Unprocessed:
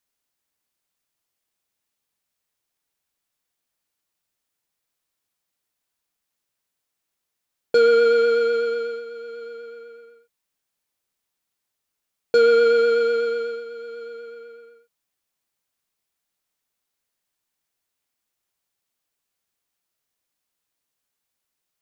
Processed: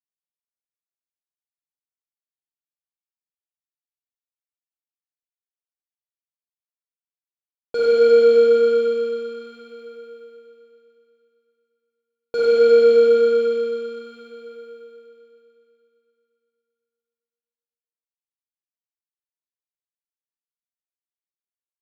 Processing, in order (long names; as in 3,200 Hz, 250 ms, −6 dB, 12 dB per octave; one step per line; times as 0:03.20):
downward expander −42 dBFS
four-comb reverb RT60 3.1 s, DRR −6 dB
level −8.5 dB